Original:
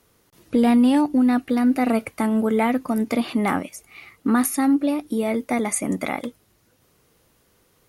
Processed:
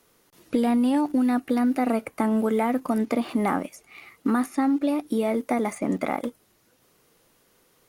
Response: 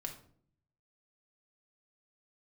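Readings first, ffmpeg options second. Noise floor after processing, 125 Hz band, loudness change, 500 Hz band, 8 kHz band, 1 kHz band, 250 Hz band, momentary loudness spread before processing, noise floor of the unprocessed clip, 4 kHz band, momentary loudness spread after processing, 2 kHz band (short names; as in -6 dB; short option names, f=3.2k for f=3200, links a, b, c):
-64 dBFS, -3.0 dB, -3.5 dB, -1.5 dB, -13.0 dB, -2.0 dB, -3.5 dB, 10 LU, -63 dBFS, -6.0 dB, 7 LU, -5.0 dB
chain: -filter_complex "[0:a]equalizer=f=68:w=0.74:g=-11.5,acrossover=split=1700|6200[a][b][c];[a]acompressor=threshold=-22dB:ratio=4[d];[b]acompressor=threshold=-47dB:ratio=4[e];[c]acompressor=threshold=-51dB:ratio=4[f];[d][e][f]amix=inputs=3:normalize=0,asplit=2[g][h];[h]aeval=exprs='val(0)*gte(abs(val(0)),0.015)':c=same,volume=-11dB[i];[g][i]amix=inputs=2:normalize=0"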